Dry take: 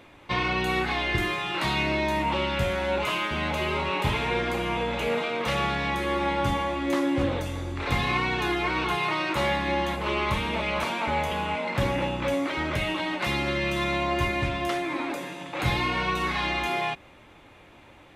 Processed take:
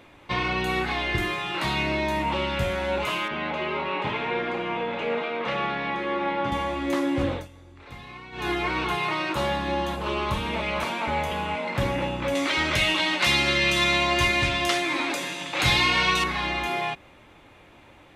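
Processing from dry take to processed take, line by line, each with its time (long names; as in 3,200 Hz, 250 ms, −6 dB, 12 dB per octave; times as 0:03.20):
0:03.28–0:06.52: band-pass filter 190–3,100 Hz
0:07.31–0:08.49: duck −16.5 dB, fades 0.17 s
0:09.32–0:10.46: parametric band 2,100 Hz −8.5 dB 0.33 octaves
0:12.35–0:16.24: parametric band 5,400 Hz +12.5 dB 2.9 octaves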